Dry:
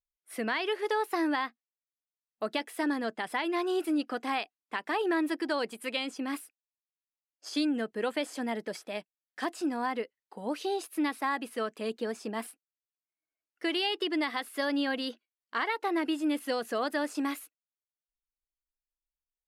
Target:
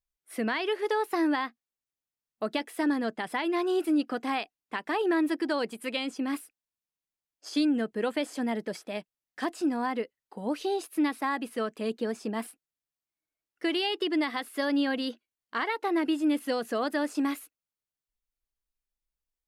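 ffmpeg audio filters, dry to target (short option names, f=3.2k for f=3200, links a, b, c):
-af "lowshelf=f=270:g=8"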